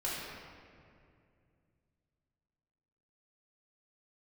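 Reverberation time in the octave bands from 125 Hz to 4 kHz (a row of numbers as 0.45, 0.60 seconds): 3.6, 3.1, 2.6, 2.1, 2.0, 1.4 seconds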